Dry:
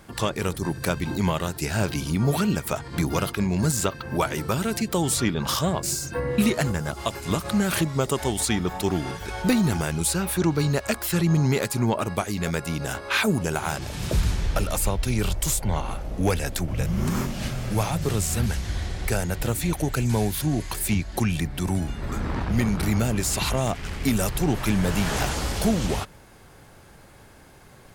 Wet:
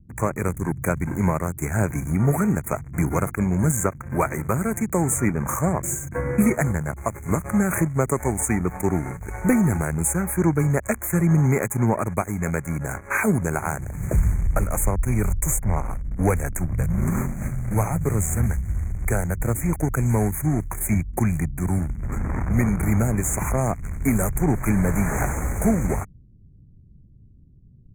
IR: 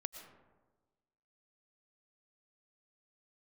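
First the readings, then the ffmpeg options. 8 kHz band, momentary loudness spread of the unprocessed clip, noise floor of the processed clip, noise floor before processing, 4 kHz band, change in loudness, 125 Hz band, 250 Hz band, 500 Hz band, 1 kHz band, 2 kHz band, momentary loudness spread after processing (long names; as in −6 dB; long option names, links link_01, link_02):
+0.5 dB, 6 LU, −49 dBFS, −49 dBFS, below −40 dB, +2.0 dB, +3.0 dB, +2.0 dB, +1.0 dB, +1.0 dB, 0.0 dB, 6 LU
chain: -filter_complex "[0:a]acrossover=split=220[link_01][link_02];[link_02]aeval=exprs='sgn(val(0))*max(abs(val(0))-0.0158,0)':channel_layout=same[link_03];[link_01][link_03]amix=inputs=2:normalize=0,asuperstop=centerf=3900:order=20:qfactor=0.98,volume=3.5dB"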